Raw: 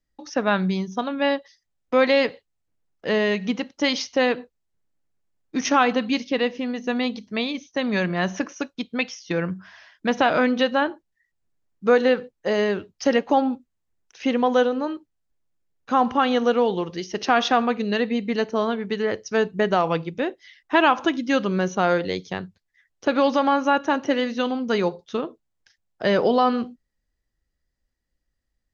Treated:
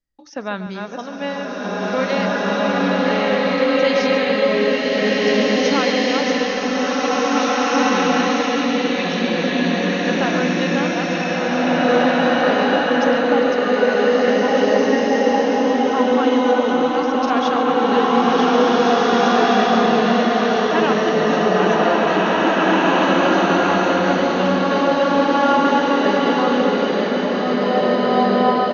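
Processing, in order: reverse delay 0.664 s, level -5 dB; outdoor echo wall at 24 m, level -12 dB; bloom reverb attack 2.13 s, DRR -10 dB; gain -5 dB

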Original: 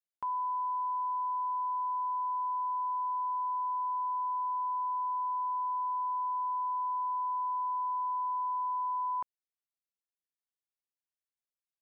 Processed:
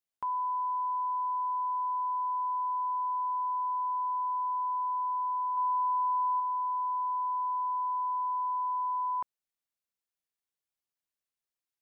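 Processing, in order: 5.57–6.4 dynamic EQ 900 Hz, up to +3 dB, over -45 dBFS, Q 0.93; gain +1.5 dB

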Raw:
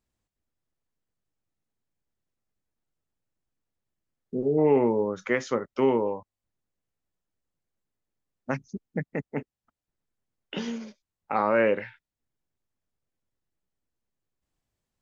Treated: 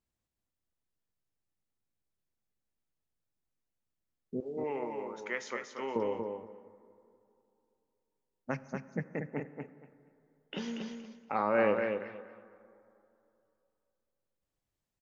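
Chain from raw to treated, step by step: 4.4–5.96 HPF 1200 Hz 6 dB/oct; feedback echo 0.235 s, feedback 19%, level -5.5 dB; plate-style reverb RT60 2.8 s, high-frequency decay 0.45×, DRR 15.5 dB; gain -6 dB

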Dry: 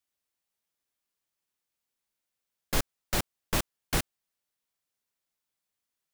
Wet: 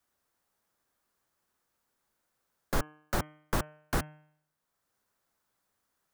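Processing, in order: resonant high shelf 1900 Hz -7 dB, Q 1.5; de-hum 152.1 Hz, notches 21; three-band squash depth 40%

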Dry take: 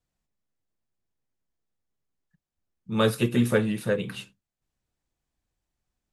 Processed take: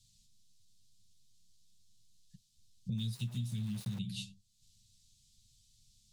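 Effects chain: LPF 8300 Hz 12 dB/oct; flange 0.35 Hz, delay 8.9 ms, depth 1.4 ms, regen +20%; Chebyshev band-stop 170–3800 Hz, order 3; 2.98–3.99 sample gate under -47 dBFS; compressor 8:1, threshold -54 dBFS, peak gain reduction 26.5 dB; mismatched tape noise reduction encoder only; gain +18 dB

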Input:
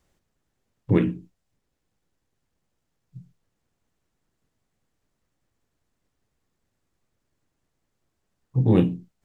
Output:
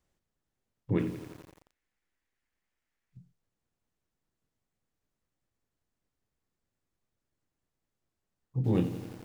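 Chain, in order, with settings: 1.18–3.17 graphic EQ 125/500/2000 Hz -12/-3/+11 dB; lo-fi delay 87 ms, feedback 80%, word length 6-bit, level -12 dB; gain -9 dB

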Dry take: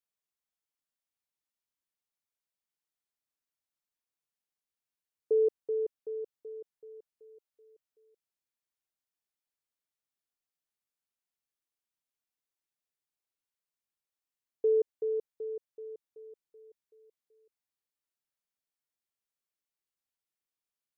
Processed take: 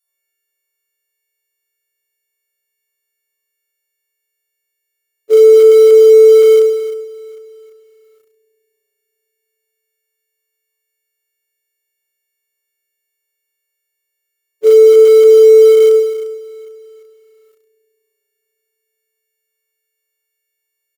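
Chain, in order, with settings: frequency quantiser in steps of 4 st; low shelf 220 Hz -8.5 dB; de-hum 315 Hz, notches 8; on a send: echo 78 ms -5.5 dB; on the sum: spring tank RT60 3.5 s, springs 34/43 ms, chirp 40 ms, DRR -7 dB; in parallel at -10 dB: companded quantiser 4-bit; on the sum: maximiser +18 dB; upward expander 2.5:1, over -14 dBFS

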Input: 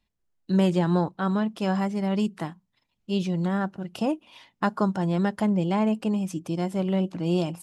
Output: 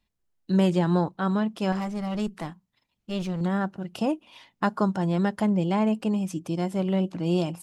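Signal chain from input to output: 1.72–3.41 one-sided clip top -33 dBFS

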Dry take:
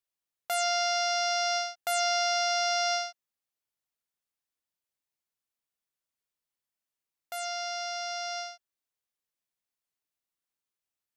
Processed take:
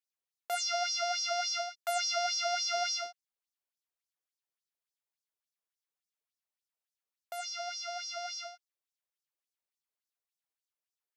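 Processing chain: 2.66–3.06 added noise brown -44 dBFS; LFO high-pass sine 3.5 Hz 410–5700 Hz; gain -6.5 dB

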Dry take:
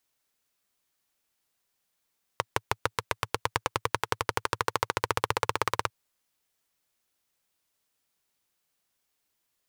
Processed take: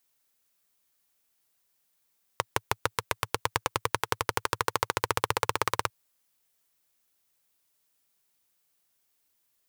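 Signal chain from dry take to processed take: high shelf 8800 Hz +7.5 dB

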